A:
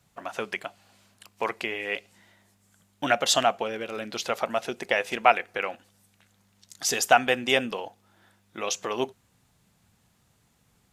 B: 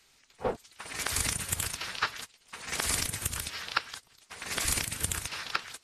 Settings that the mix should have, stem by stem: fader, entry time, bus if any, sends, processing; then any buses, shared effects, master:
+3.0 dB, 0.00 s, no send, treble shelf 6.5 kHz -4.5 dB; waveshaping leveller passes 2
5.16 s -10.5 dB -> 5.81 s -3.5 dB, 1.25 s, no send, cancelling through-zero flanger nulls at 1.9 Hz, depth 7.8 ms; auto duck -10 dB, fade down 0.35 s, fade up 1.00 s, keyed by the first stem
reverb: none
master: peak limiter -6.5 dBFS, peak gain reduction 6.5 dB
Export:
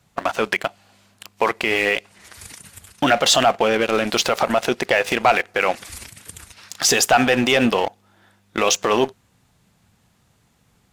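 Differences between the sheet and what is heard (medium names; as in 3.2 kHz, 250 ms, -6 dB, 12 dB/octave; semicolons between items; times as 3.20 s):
stem A +3.0 dB -> +9.5 dB; stem B -10.5 dB -> -1.5 dB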